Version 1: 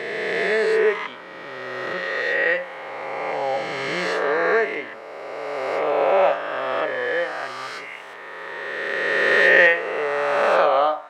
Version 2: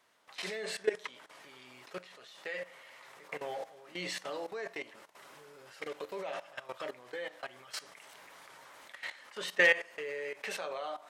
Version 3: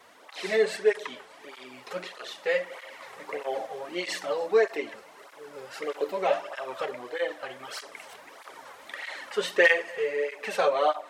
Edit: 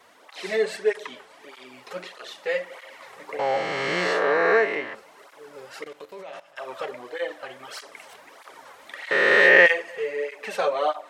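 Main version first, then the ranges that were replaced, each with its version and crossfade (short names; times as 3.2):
3
3.39–4.95 from 1
5.84–6.56 from 2
9.11–9.66 from 1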